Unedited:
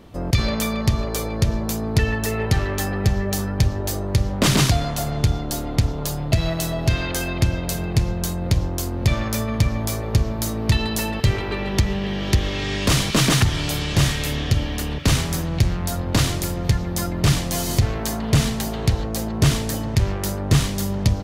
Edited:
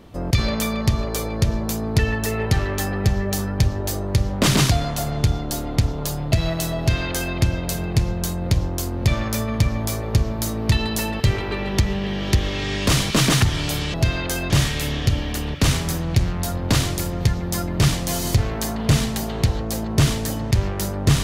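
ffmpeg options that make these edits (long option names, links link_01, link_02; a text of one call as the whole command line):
ffmpeg -i in.wav -filter_complex "[0:a]asplit=3[link_01][link_02][link_03];[link_01]atrim=end=13.942[link_04];[link_02]atrim=start=6.788:end=7.352[link_05];[link_03]atrim=start=13.938[link_06];[link_04][link_05]acrossfade=duration=0.004:curve1=hsin:curve2=hsin[link_07];[link_07][link_06]acrossfade=duration=0.004:curve1=hsin:curve2=hsin" out.wav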